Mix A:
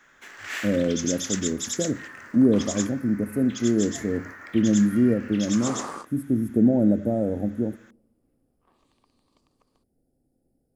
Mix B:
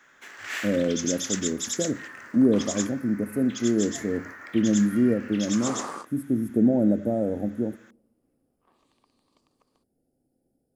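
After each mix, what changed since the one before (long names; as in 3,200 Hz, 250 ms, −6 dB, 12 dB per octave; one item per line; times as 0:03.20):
master: add low-shelf EQ 93 Hz −11 dB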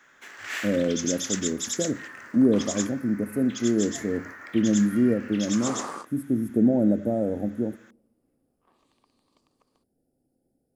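nothing changed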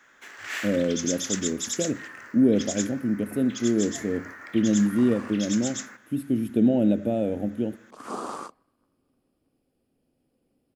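speech: remove Butterworth band-reject 2,900 Hz, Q 0.64
second sound: entry +2.45 s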